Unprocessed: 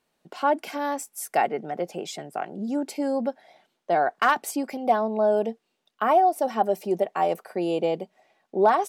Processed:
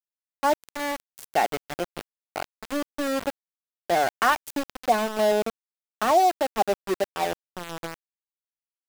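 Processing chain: ending faded out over 2.23 s; sample gate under -24.5 dBFS

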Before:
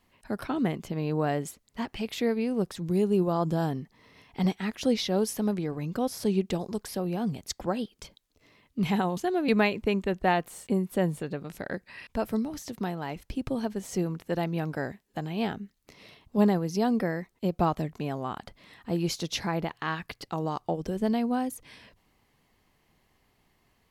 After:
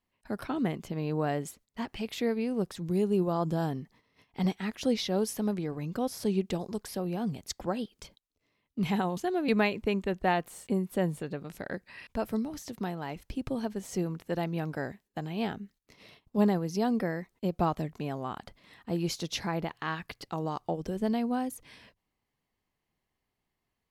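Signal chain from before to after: gate -54 dBFS, range -13 dB; gain -2.5 dB

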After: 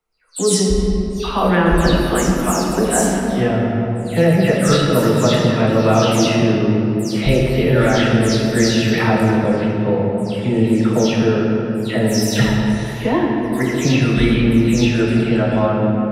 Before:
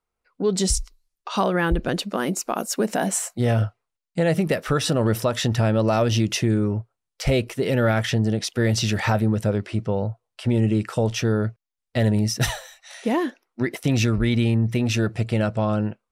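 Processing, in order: spectral delay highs early, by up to 0.207 s; shoebox room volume 160 m³, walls hard, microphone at 0.56 m; gain +3.5 dB

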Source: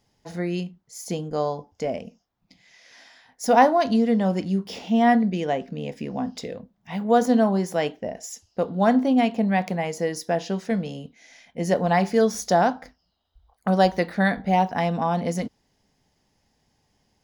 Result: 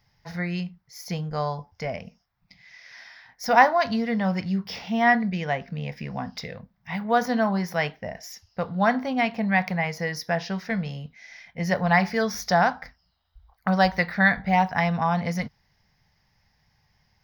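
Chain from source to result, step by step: EQ curve 150 Hz 0 dB, 300 Hz -17 dB, 920 Hz -3 dB, 2100 Hz +3 dB, 3000 Hz -6 dB, 5500 Hz -1 dB, 8500 Hz -30 dB, 12000 Hz -2 dB; gain +4.5 dB

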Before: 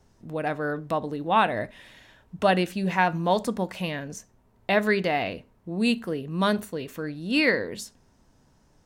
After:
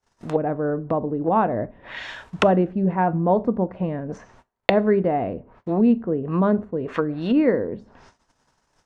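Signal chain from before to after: EQ curve 220 Hz 0 dB, 1200 Hz +14 dB, 3800 Hz +12 dB; gate -52 dBFS, range -35 dB; LPF 9700 Hz; treble ducked by the level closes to 330 Hz, closed at -21 dBFS; on a send: reverb RT60 0.45 s, pre-delay 4 ms, DRR 20 dB; on the sum: gain +6.5 dB

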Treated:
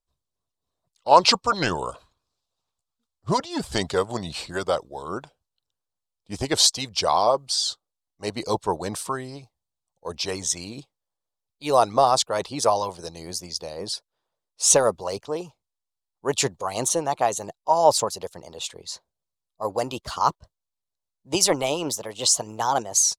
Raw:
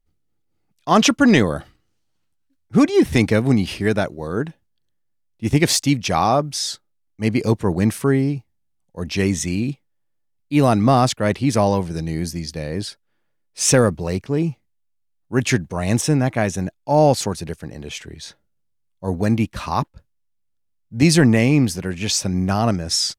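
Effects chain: speed glide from 81% -> 119%; graphic EQ 250/500/1000/2000/4000/8000 Hz -10/+7/+11/-9/+9/+7 dB; harmonic-percussive split harmonic -12 dB; gain -5.5 dB

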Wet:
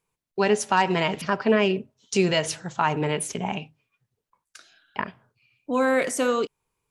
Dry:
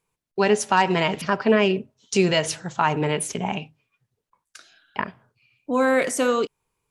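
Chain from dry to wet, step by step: 5.04–5.79 dynamic EQ 3000 Hz, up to +7 dB, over -55 dBFS, Q 1.5; gain -2 dB

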